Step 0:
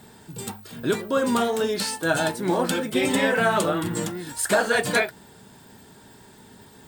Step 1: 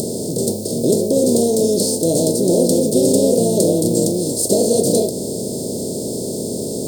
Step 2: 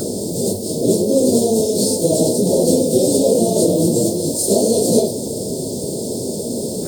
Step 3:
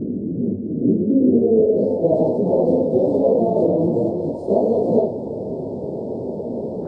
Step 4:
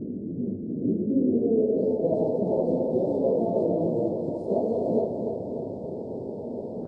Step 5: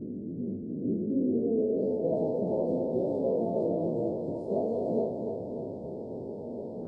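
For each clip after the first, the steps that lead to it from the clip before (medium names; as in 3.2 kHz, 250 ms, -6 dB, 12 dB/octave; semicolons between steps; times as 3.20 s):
spectral levelling over time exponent 0.4; elliptic band-stop 530–5000 Hz, stop band 70 dB; upward compressor, threshold -25 dBFS; trim +5 dB
phase randomisation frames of 100 ms; peaking EQ 1.5 kHz +10 dB 0.85 oct
low-pass sweep 270 Hz -> 910 Hz, 1.14–2.22 s; trim -4 dB
feedback delay 295 ms, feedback 56%, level -7 dB; trim -8.5 dB
spectral sustain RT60 0.57 s; trim -6 dB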